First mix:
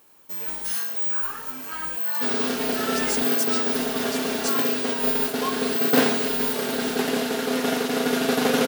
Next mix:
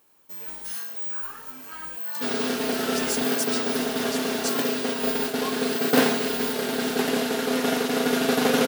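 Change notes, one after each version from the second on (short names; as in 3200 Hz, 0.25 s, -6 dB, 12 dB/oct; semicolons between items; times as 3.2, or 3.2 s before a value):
first sound -6.0 dB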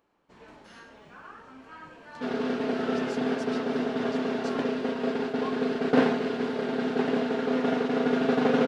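master: add tape spacing loss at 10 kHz 32 dB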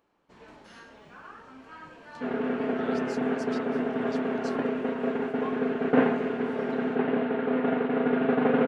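second sound: add LPF 2600 Hz 24 dB/oct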